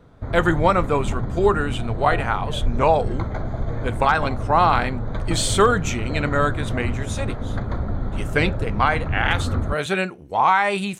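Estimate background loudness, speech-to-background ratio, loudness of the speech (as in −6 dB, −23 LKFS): −28.0 LKFS, 6.0 dB, −22.0 LKFS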